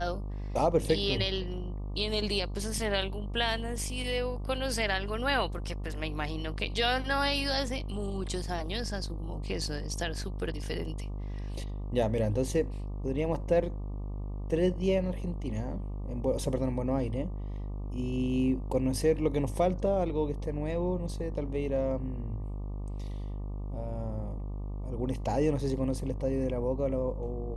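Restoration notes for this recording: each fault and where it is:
buzz 50 Hz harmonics 24 -36 dBFS

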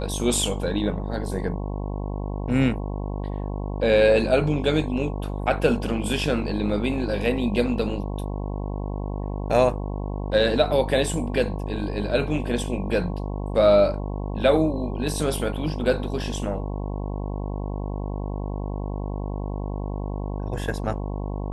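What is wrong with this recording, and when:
buzz 50 Hz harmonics 22 -29 dBFS

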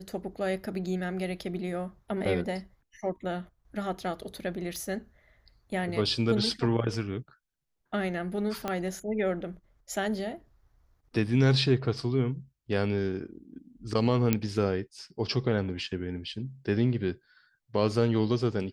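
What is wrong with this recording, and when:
4.76 s: pop
8.68 s: pop -16 dBFS
14.33 s: pop -10 dBFS

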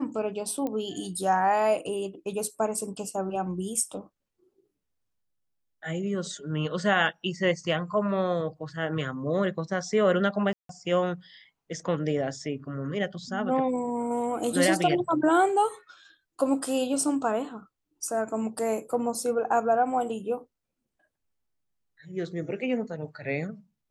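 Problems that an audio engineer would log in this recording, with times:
0.67 s: pop -20 dBFS
10.53–10.69 s: dropout 163 ms

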